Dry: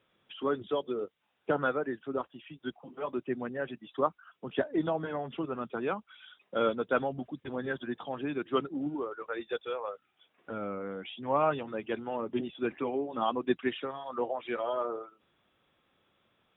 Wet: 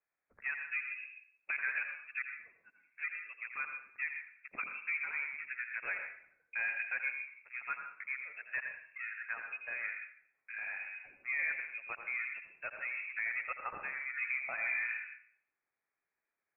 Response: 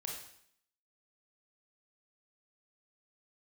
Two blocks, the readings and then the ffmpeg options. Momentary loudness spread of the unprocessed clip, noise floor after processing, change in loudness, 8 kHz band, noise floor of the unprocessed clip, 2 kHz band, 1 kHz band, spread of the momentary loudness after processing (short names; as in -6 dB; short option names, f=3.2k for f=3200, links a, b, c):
11 LU, under -85 dBFS, -4.0 dB, n/a, -75 dBFS, +7.0 dB, -13.5 dB, 10 LU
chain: -filter_complex "[0:a]highpass=f=620:w=0.5412,highpass=f=620:w=1.3066,afwtdn=0.00891,alimiter=level_in=3dB:limit=-24dB:level=0:latency=1:release=29,volume=-3dB,asplit=2[a][b];[1:a]atrim=start_sample=2205,asetrate=52920,aresample=44100,adelay=84[c];[b][c]afir=irnorm=-1:irlink=0,volume=-2dB[d];[a][d]amix=inputs=2:normalize=0,lowpass=f=2.6k:t=q:w=0.5098,lowpass=f=2.6k:t=q:w=0.6013,lowpass=f=2.6k:t=q:w=0.9,lowpass=f=2.6k:t=q:w=2.563,afreqshift=-3000"